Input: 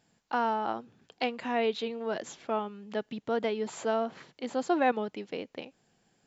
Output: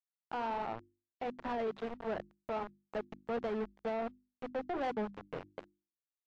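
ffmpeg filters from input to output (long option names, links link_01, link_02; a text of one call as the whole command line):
ffmpeg -i in.wav -af "flanger=delay=0:depth=6.4:regen=73:speed=1.4:shape=sinusoidal,asubboost=boost=7:cutoff=100,aeval=exprs='val(0)*gte(abs(val(0)),0.0133)':channel_layout=same,lowshelf=frequency=240:gain=2,alimiter=level_in=5.5dB:limit=-24dB:level=0:latency=1:release=69,volume=-5.5dB,lowpass=1400,bandreject=frequency=50:width_type=h:width=6,bandreject=frequency=100:width_type=h:width=6,bandreject=frequency=150:width_type=h:width=6,bandreject=frequency=200:width_type=h:width=6,bandreject=frequency=250:width_type=h:width=6,bandreject=frequency=300:width_type=h:width=6,bandreject=frequency=350:width_type=h:width=6,asoftclip=type=tanh:threshold=-38.5dB,volume=8dB" -ar 22050 -c:a libmp3lame -b:a 64k out.mp3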